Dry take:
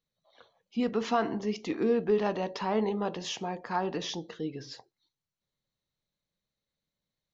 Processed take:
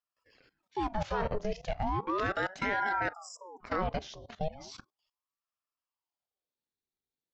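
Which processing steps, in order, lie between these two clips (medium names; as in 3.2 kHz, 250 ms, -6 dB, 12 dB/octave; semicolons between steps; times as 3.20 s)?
spectral selection erased 3.13–3.61 s, 360–5800 Hz; level held to a coarse grid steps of 17 dB; ring modulator with a swept carrier 710 Hz, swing 70%, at 0.36 Hz; trim +6.5 dB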